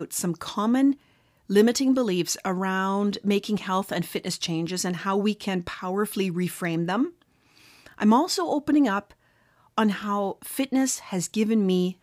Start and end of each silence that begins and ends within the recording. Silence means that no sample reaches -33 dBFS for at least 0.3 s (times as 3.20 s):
0.93–1.50 s
7.08–7.86 s
9.00–9.78 s